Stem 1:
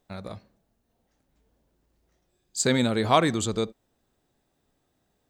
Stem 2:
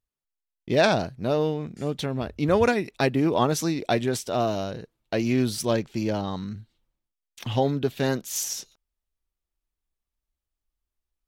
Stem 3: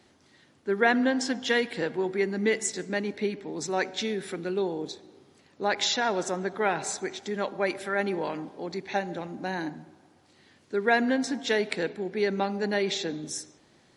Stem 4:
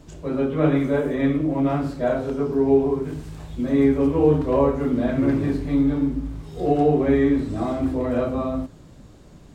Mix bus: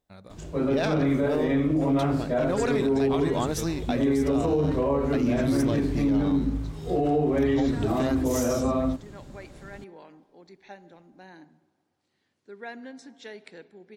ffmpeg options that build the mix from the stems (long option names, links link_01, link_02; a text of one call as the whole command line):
ffmpeg -i stem1.wav -i stem2.wav -i stem3.wav -i stem4.wav -filter_complex "[0:a]volume=-10dB[link_01];[1:a]bandreject=frequency=4400:width=15,aeval=exprs='0.447*(cos(1*acos(clip(val(0)/0.447,-1,1)))-cos(1*PI/2))+0.01*(cos(8*acos(clip(val(0)/0.447,-1,1)))-cos(8*PI/2))':channel_layout=same,volume=-4dB[link_02];[2:a]adelay=1750,volume=-16.5dB[link_03];[3:a]adelay=300,volume=0.5dB[link_04];[link_01][link_02][link_03][link_04]amix=inputs=4:normalize=0,alimiter=limit=-16dB:level=0:latency=1:release=48" out.wav